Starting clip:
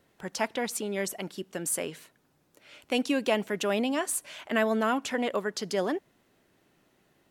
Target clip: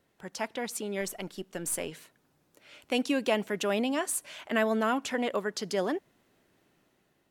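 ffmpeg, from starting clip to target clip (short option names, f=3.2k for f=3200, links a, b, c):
-filter_complex "[0:a]asettb=1/sr,asplit=3[a][b][c];[a]atrim=end=1.014[d];[b]atrim=start=1.01:end=1.92,asetpts=PTS-STARTPTS,afade=t=in:d=0.004:c=qsin,afade=t=out:st=0.906:d=0.004:c=qsin,aeval=exprs='if(lt(val(0),0),0.708*val(0),val(0))':c=same[e];[c]atrim=start=1.916[f];[d][e]acrossfade=d=0.004:c1=hsin:c2=qsin[g];[g][f]acrossfade=d=0.004:c1=qsin:c2=hsin,dynaudnorm=f=220:g=7:m=4dB,volume=-5dB"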